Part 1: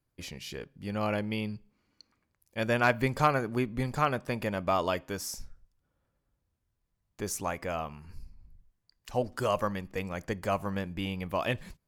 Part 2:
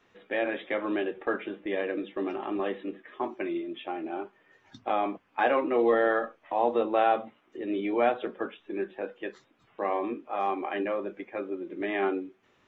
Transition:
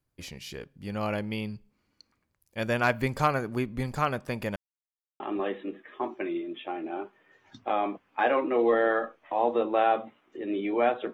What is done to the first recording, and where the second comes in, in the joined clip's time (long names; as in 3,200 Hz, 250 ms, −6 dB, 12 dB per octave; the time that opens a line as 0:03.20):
part 1
0:04.56–0:05.20: silence
0:05.20: continue with part 2 from 0:02.40